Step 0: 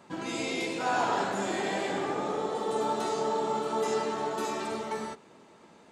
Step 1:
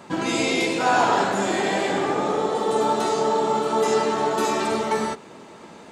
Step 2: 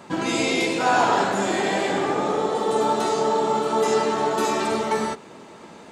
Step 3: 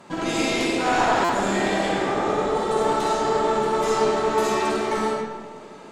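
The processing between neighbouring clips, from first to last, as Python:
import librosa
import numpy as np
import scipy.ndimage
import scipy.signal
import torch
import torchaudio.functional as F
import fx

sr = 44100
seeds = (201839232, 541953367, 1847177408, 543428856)

y1 = fx.rider(x, sr, range_db=10, speed_s=2.0)
y1 = y1 * 10.0 ** (8.5 / 20.0)
y2 = y1
y3 = fx.tube_stage(y2, sr, drive_db=15.0, bias=0.65)
y3 = fx.rev_freeverb(y3, sr, rt60_s=1.4, hf_ratio=0.55, predelay_ms=15, drr_db=-0.5)
y3 = fx.buffer_glitch(y3, sr, at_s=(1.24,), block=256, repeats=8)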